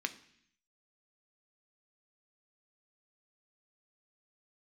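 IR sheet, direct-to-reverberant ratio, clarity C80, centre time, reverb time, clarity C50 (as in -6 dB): 8.0 dB, 18.5 dB, 6 ms, 0.65 s, 15.5 dB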